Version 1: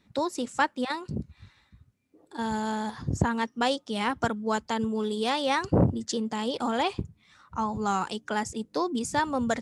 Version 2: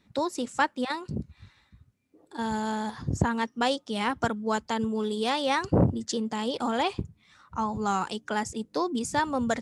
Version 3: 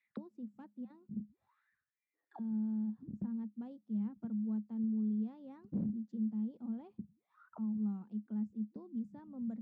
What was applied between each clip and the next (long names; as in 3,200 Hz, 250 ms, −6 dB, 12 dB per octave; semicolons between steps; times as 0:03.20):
no processing that can be heard
in parallel at −10 dB: wrap-around overflow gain 14.5 dB; on the sum: envelope filter 210–2,200 Hz, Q 13, down, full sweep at −29.5 dBFS; level −2.5 dB